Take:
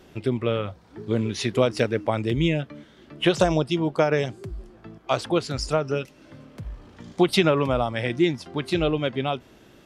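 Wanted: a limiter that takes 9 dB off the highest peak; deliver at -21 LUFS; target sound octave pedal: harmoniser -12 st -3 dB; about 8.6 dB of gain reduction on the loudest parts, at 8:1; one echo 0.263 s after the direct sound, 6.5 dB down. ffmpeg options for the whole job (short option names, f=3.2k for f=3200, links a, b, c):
-filter_complex "[0:a]acompressor=threshold=-23dB:ratio=8,alimiter=limit=-19.5dB:level=0:latency=1,aecho=1:1:263:0.473,asplit=2[a][b];[b]asetrate=22050,aresample=44100,atempo=2,volume=-3dB[c];[a][c]amix=inputs=2:normalize=0,volume=9.5dB"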